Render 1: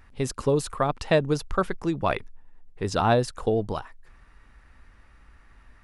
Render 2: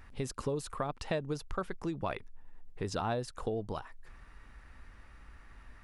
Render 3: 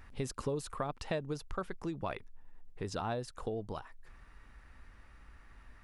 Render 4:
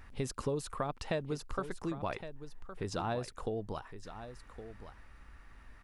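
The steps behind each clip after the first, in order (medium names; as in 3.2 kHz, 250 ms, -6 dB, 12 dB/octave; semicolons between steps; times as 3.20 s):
compression 2.5:1, threshold -37 dBFS, peak gain reduction 14 dB
gain riding 2 s; trim -2 dB
delay 1114 ms -12 dB; trim +1 dB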